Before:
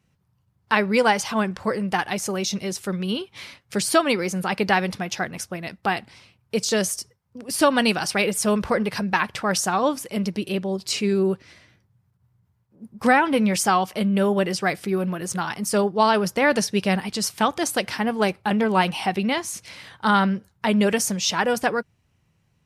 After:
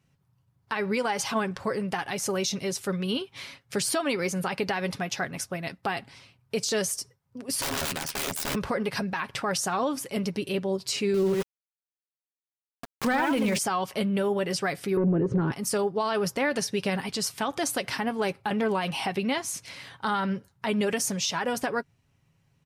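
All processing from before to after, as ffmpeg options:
ffmpeg -i in.wav -filter_complex "[0:a]asettb=1/sr,asplit=3[link_01][link_02][link_03];[link_01]atrim=end=7.614[link_04];[link_02]atrim=start=7.61:end=8.55,asetpts=PTS-STARTPTS,afade=type=in:duration=0.004:curve=qsin,afade=type=out:start_time=0.936:duration=0.004:curve=qsin,tremolo=f=77:d=1,aeval=exprs='(mod(12.6*val(0)+1,2)-1)/12.6':channel_layout=same[link_05];[link_03]atrim=start=8.546[link_06];[link_04][link_05]acrossfade=duration=0.004:curve1=hsin:curve2=qsin[link_07];[link_07][link_06]acrossfade=duration=0.004:curve1=qsin:curve2=hsin,asettb=1/sr,asplit=3[link_08][link_09][link_10];[link_08]atrim=end=11.144[link_11];[link_09]atrim=start=11.14:end=13.58,asetpts=PTS-STARTPTS,afade=type=in:duration=0.004:curve=qsin,afade=type=out:start_time=2.436:duration=0.004:curve=qsin,aecho=1:1:83:0.422,atrim=end_sample=107604,acontrast=85,aeval=exprs='val(0)*gte(abs(val(0)),0.0531)':channel_layout=same[link_12];[link_10]atrim=start=13.576[link_13];[link_11][link_12]acrossfade=duration=0.004:curve1=hsin:curve2=qsin[link_14];[link_14][link_13]acrossfade=duration=0.004:curve1=qsin:curve2=hsin,asettb=1/sr,asplit=3[link_15][link_16][link_17];[link_15]atrim=end=14.974[link_18];[link_16]atrim=start=14.97:end=15.52,asetpts=PTS-STARTPTS,afade=type=in:duration=0.004:curve=qsin,afade=type=out:start_time=0.546:duration=0.004:curve=qsin,lowpass=1300,lowshelf=frequency=570:width_type=q:width=3:gain=10,acontrast=70[link_19];[link_17]atrim=start=15.516[link_20];[link_18][link_19]acrossfade=duration=0.004:curve1=hsin:curve2=qsin[link_21];[link_21][link_20]acrossfade=duration=0.004:curve1=qsin:curve2=hsin,aecho=1:1:7.3:0.37,alimiter=limit=-16dB:level=0:latency=1:release=101,volume=-2dB" out.wav

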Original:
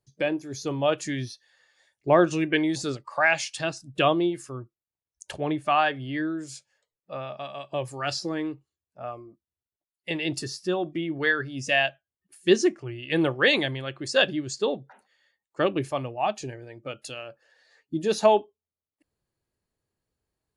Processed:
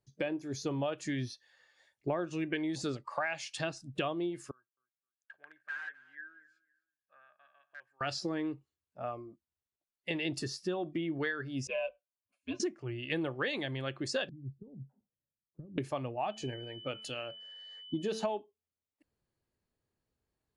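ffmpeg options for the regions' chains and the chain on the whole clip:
ffmpeg -i in.wav -filter_complex "[0:a]asettb=1/sr,asplit=3[link_01][link_02][link_03];[link_01]atrim=end=4.514[link_04];[link_02]atrim=start=4.51:end=8.01,asetpts=PTS-STARTPTS,afade=type=in:duration=0.004:curve=qsin,afade=type=out:start_time=3.496:duration=0.004:curve=qsin,aeval=exprs='(mod(7.5*val(0)+1,2)-1)/7.5':channel_layout=same,bandpass=frequency=1600:width_type=q:width=19,aecho=1:1:259|518:0.1|0.025,atrim=end_sample=154350[link_05];[link_03]atrim=start=8.006[link_06];[link_04][link_05]acrossfade=duration=0.004:curve1=hsin:curve2=qsin[link_07];[link_07][link_06]acrossfade=duration=0.004:curve1=qsin:curve2=hsin,asettb=1/sr,asplit=3[link_08][link_09][link_10];[link_08]atrim=end=11.674[link_11];[link_09]atrim=start=11.67:end=12.6,asetpts=PTS-STARTPTS,afade=type=in:duration=0.004:curve=qsin,afade=type=out:start_time=0.926:duration=0.004:curve=qsin,asplit=3[link_12][link_13][link_14];[link_12]bandpass=frequency=730:width_type=q:width=8,volume=0dB[link_15];[link_13]bandpass=frequency=1090:width_type=q:width=8,volume=-6dB[link_16];[link_14]bandpass=frequency=2440:width_type=q:width=8,volume=-9dB[link_17];[link_15][link_16][link_17]amix=inputs=3:normalize=0,aecho=1:1:6.3:0.64,atrim=end_sample=41013,afreqshift=-91[link_18];[link_10]atrim=start=12.596[link_19];[link_11][link_18]acrossfade=duration=0.004:curve1=hsin:curve2=qsin[link_20];[link_20][link_19]acrossfade=duration=0.004:curve1=qsin:curve2=hsin,asettb=1/sr,asplit=3[link_21][link_22][link_23];[link_21]atrim=end=14.294[link_24];[link_22]atrim=start=14.29:end=15.78,asetpts=PTS-STARTPTS,afade=type=in:duration=0.004:curve=qsin,afade=type=out:start_time=1.486:duration=0.004:curve=qsin,acompressor=threshold=-33dB:ratio=16:attack=3.2:release=140:knee=1:detection=peak,lowpass=frequency=150:width_type=q:width=1.5[link_25];[link_23]atrim=start=15.776[link_26];[link_24][link_25]acrossfade=duration=0.004:curve1=hsin:curve2=qsin[link_27];[link_27][link_26]acrossfade=duration=0.004:curve1=qsin:curve2=hsin,asettb=1/sr,asplit=3[link_28][link_29][link_30];[link_28]atrim=end=16.304[link_31];[link_29]atrim=start=16.3:end=18.3,asetpts=PTS-STARTPTS,afade=type=in:duration=0.004:curve=qsin,afade=type=out:start_time=1.996:duration=0.004:curve=qsin,bandreject=frequency=221.7:width_type=h:width=4,bandreject=frequency=443.4:width_type=h:width=4,bandreject=frequency=665.1:width_type=h:width=4,bandreject=frequency=886.8:width_type=h:width=4,bandreject=frequency=1108.5:width_type=h:width=4,bandreject=frequency=1330.2:width_type=h:width=4,bandreject=frequency=1551.9:width_type=h:width=4,bandreject=frequency=1773.6:width_type=h:width=4,bandreject=frequency=1995.3:width_type=h:width=4,bandreject=frequency=2217:width_type=h:width=4,bandreject=frequency=2438.7:width_type=h:width=4,bandreject=frequency=2660.4:width_type=h:width=4,aeval=exprs='val(0)+0.00631*sin(2*PI*3000*n/s)':channel_layout=same[link_32];[link_30]atrim=start=18.296[link_33];[link_31][link_32]acrossfade=duration=0.004:curve1=hsin:curve2=qsin[link_34];[link_34][link_33]acrossfade=duration=0.004:curve1=qsin:curve2=hsin,highshelf=frequency=6900:gain=-8.5,acompressor=threshold=-29dB:ratio=8,equalizer=frequency=240:width_type=o:width=0.31:gain=3,volume=-2dB" out.wav

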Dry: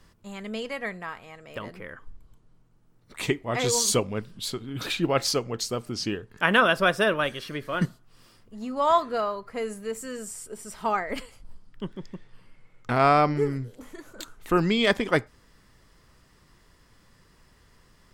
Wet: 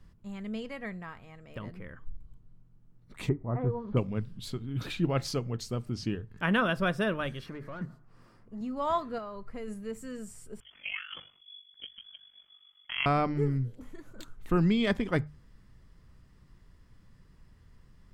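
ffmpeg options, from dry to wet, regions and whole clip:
ffmpeg -i in.wav -filter_complex "[0:a]asettb=1/sr,asplit=3[link_01][link_02][link_03];[link_01]atrim=end=3.294[link_04];[link_02]atrim=start=3.29:end=3.97,asetpts=PTS-STARTPTS,afade=type=in:duration=0.004:curve=qsin,afade=type=out:start_time=0.676:duration=0.004:curve=qsin,lowpass=frequency=1300:width=0.5412,lowpass=frequency=1300:width=1.3066,acompressor=mode=upward:threshold=-32dB:ratio=2.5:attack=3.2:release=140:knee=2.83:detection=peak[link_05];[link_03]atrim=start=3.966[link_06];[link_04][link_05]acrossfade=duration=0.004:curve1=hsin:curve2=qsin[link_07];[link_07][link_06]acrossfade=duration=0.004:curve1=qsin:curve2=hsin,asettb=1/sr,asplit=3[link_08][link_09][link_10];[link_08]atrim=end=7.464[link_11];[link_09]atrim=start=7.46:end=8.61,asetpts=PTS-STARTPTS,afade=type=in:duration=0.004:curve=qsin,afade=type=out:start_time=1.146:duration=0.004:curve=qsin,equalizer=frequency=3200:width_type=o:width=0.94:gain=-10.5,acompressor=threshold=-35dB:ratio=3:attack=3.2:release=140:knee=1:detection=peak,asplit=2[link_12][link_13];[link_13]highpass=frequency=720:poles=1,volume=17dB,asoftclip=type=tanh:threshold=-26dB[link_14];[link_12][link_14]amix=inputs=2:normalize=0,lowpass=frequency=1600:poles=1,volume=-6dB[link_15];[link_10]atrim=start=8.606[link_16];[link_11][link_15]acrossfade=duration=0.004:curve1=hsin:curve2=qsin[link_17];[link_17][link_16]acrossfade=duration=0.004:curve1=qsin:curve2=hsin,asettb=1/sr,asplit=3[link_18][link_19][link_20];[link_18]atrim=end=9.184[link_21];[link_19]atrim=start=9.18:end=9.68,asetpts=PTS-STARTPTS,afade=type=in:duration=0.004:curve=qsin,afade=type=out:start_time=0.496:duration=0.004:curve=qsin,asubboost=boost=12:cutoff=73,acompressor=threshold=-30dB:ratio=3:attack=3.2:release=140:knee=1:detection=peak[link_22];[link_20]atrim=start=9.676[link_23];[link_21][link_22]acrossfade=duration=0.004:curve1=hsin:curve2=qsin[link_24];[link_24][link_23]acrossfade=duration=0.004:curve1=qsin:curve2=hsin,asettb=1/sr,asplit=3[link_25][link_26][link_27];[link_25]atrim=end=10.604[link_28];[link_26]atrim=start=10.6:end=13.06,asetpts=PTS-STARTPTS,afade=type=in:duration=0.004:curve=qsin,afade=type=out:start_time=2.456:duration=0.004:curve=qsin,asplit=2[link_29][link_30];[link_30]adelay=15,volume=-13dB[link_31];[link_29][link_31]amix=inputs=2:normalize=0,atrim=end_sample=108486,lowpass=frequency=2900:width_type=q:width=0.5098,lowpass=frequency=2900:width_type=q:width=0.6013,lowpass=frequency=2900:width_type=q:width=0.9,lowpass=frequency=2900:width_type=q:width=2.563,afreqshift=-3400,aeval=exprs='val(0)*sin(2*PI*24*n/s)':channel_layout=same[link_32];[link_27]atrim=start=13.056[link_33];[link_28][link_32]acrossfade=duration=0.004:curve1=hsin:curve2=qsin[link_34];[link_34][link_33]acrossfade=duration=0.004:curve1=qsin:curve2=hsin,bass=frequency=250:gain=13,treble=frequency=4000:gain=-4,bandreject=frequency=50:width_type=h:width=6,bandreject=frequency=100:width_type=h:width=6,bandreject=frequency=150:width_type=h:width=6,volume=-8.5dB" out.wav

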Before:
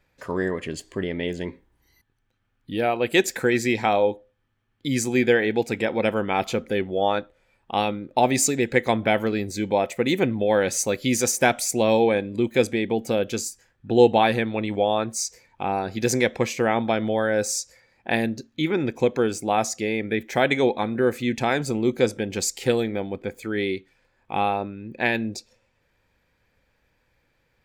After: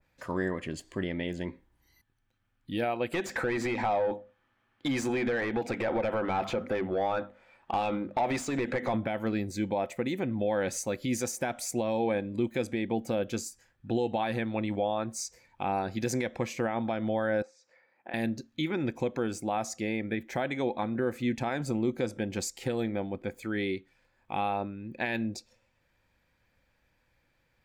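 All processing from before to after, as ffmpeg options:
ffmpeg -i in.wav -filter_complex "[0:a]asettb=1/sr,asplit=3[link_01][link_02][link_03];[link_01]atrim=end=3.124[link_04];[link_02]atrim=start=3.12:end=8.94,asetpts=PTS-STARTPTS,afade=type=in:duration=0.004:curve=qsin,afade=type=out:start_time=5.816:duration=0.004:curve=qsin,bandreject=frequency=50:width_type=h:width=6,bandreject=frequency=100:width_type=h:width=6,bandreject=frequency=150:width_type=h:width=6,bandreject=frequency=200:width_type=h:width=6,bandreject=frequency=250:width_type=h:width=6,acompressor=threshold=-24dB:ratio=10:attack=3.2:release=140:knee=1:detection=peak,asplit=2[link_05][link_06];[link_06]highpass=frequency=720:poles=1,volume=20dB,asoftclip=type=tanh:threshold=-13dB[link_07];[link_05][link_07]amix=inputs=2:normalize=0,lowpass=frequency=1500:poles=1,volume=-6dB[link_08];[link_03]atrim=start=8.936[link_09];[link_04][link_08]acrossfade=duration=0.004:curve1=hsin:curve2=qsin[link_10];[link_10][link_09]acrossfade=duration=0.004:curve1=qsin:curve2=hsin,asettb=1/sr,asplit=3[link_11][link_12][link_13];[link_11]atrim=end=17.424[link_14];[link_12]atrim=start=17.42:end=18.14,asetpts=PTS-STARTPTS,afade=type=in:duration=0.004:curve=qsin,afade=type=out:start_time=0.716:duration=0.004:curve=qsin,acompressor=threshold=-31dB:ratio=5:attack=3.2:release=140:knee=1:detection=peak,highpass=350,lowpass=2000[link_15];[link_13]atrim=start=18.136[link_16];[link_14][link_15]acrossfade=duration=0.004:curve1=hsin:curve2=qsin[link_17];[link_17][link_16]acrossfade=duration=0.004:curve1=qsin:curve2=hsin,equalizer=frequency=430:width=6.9:gain=-8.5,alimiter=limit=-15.5dB:level=0:latency=1:release=151,adynamicequalizer=threshold=0.00631:dfrequency=1900:dqfactor=0.7:tfrequency=1900:tqfactor=0.7:attack=5:release=100:ratio=0.375:range=3:mode=cutabove:tftype=highshelf,volume=-3.5dB" out.wav

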